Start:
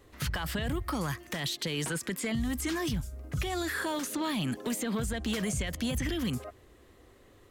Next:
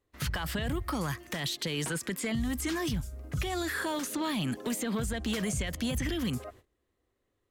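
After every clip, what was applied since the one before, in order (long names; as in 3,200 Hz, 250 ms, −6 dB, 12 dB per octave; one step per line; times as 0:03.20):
noise gate −52 dBFS, range −21 dB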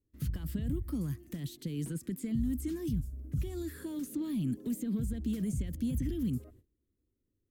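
drawn EQ curve 290 Hz 0 dB, 790 Hz −24 dB, 5,700 Hz −16 dB, 16,000 Hz −4 dB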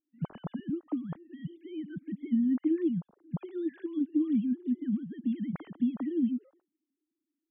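three sine waves on the formant tracks
level +2.5 dB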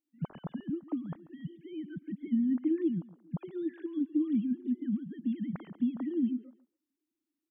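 repeating echo 138 ms, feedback 20%, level −19.5 dB
level −1.5 dB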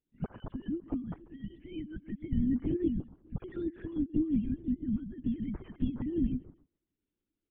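linear-prediction vocoder at 8 kHz whisper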